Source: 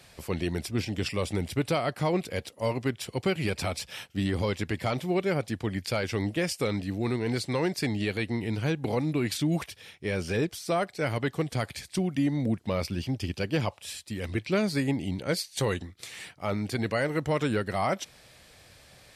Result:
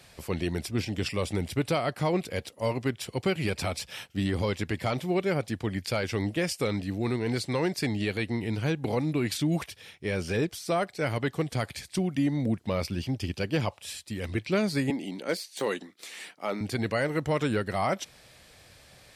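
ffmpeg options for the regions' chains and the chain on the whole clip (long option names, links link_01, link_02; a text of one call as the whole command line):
ffmpeg -i in.wav -filter_complex "[0:a]asettb=1/sr,asplit=3[link_01][link_02][link_03];[link_01]atrim=end=14.904[link_04];[link_02]atrim=start=14.9:end=16.61,asetpts=PTS-STARTPTS,afade=type=in:duration=0.004:curve=qsin,afade=type=out:start_time=1.706:duration=0.004:curve=qsin,highpass=frequency=220:width=0.5412,highpass=frequency=220:width=1.3066,deesser=0.7,asoftclip=type=hard:threshold=-18.5dB[link_05];[link_03]atrim=start=16.606[link_06];[link_04][link_05]acrossfade=duration=0.004:curve1=hsin:curve2=qsin[link_07];[link_07][link_06]acrossfade=duration=0.004:curve1=qsin:curve2=hsin" out.wav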